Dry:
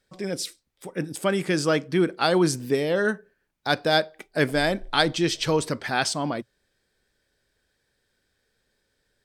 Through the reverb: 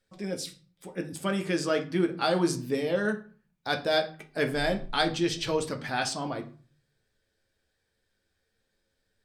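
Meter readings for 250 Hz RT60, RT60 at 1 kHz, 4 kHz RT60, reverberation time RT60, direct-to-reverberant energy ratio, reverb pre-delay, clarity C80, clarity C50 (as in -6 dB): 0.60 s, 0.45 s, 0.30 s, 0.40 s, 3.5 dB, 9 ms, 18.5 dB, 14.0 dB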